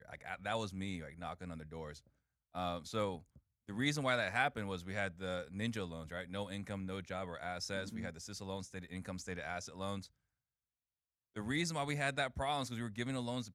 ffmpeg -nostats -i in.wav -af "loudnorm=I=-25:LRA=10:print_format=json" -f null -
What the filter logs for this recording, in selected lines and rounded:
"input_i" : "-39.8",
"input_tp" : "-17.1",
"input_lra" : "5.1",
"input_thresh" : "-50.1",